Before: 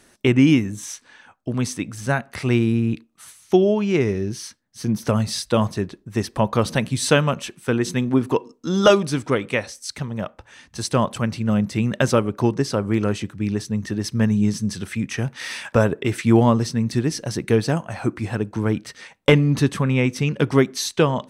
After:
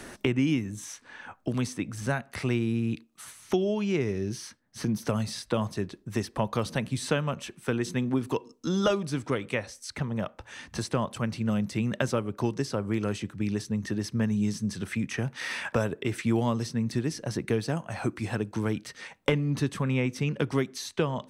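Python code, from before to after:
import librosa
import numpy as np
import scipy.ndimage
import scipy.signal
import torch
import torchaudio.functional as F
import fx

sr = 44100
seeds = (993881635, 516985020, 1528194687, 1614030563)

y = fx.band_squash(x, sr, depth_pct=70)
y = F.gain(torch.from_numpy(y), -8.5).numpy()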